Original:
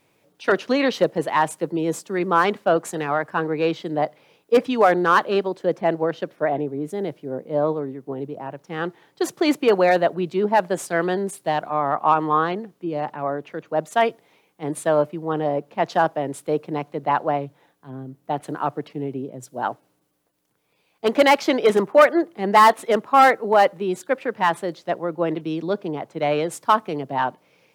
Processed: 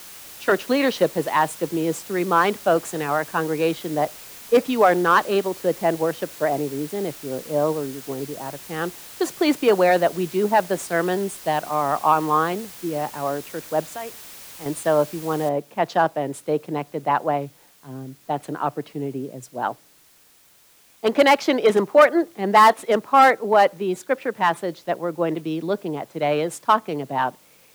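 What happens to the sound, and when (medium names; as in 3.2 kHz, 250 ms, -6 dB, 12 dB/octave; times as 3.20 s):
13.91–14.66 s: compression 2.5:1, threshold -36 dBFS
15.49 s: noise floor step -41 dB -55 dB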